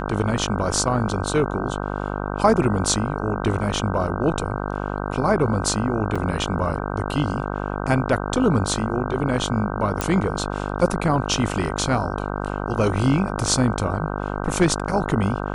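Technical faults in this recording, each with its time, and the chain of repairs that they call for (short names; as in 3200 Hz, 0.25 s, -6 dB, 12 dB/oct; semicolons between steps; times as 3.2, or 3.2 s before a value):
buzz 50 Hz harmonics 31 -27 dBFS
6.15–6.16 gap 5.5 ms
10.01 pop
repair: de-click; de-hum 50 Hz, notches 31; interpolate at 6.15, 5.5 ms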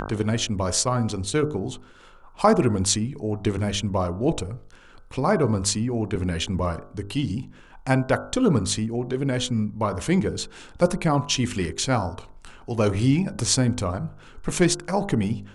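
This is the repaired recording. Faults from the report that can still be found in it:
none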